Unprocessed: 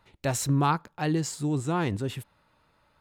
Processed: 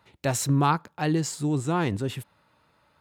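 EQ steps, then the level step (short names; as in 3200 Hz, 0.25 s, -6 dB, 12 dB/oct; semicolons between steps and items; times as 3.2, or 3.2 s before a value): HPF 75 Hz; +2.0 dB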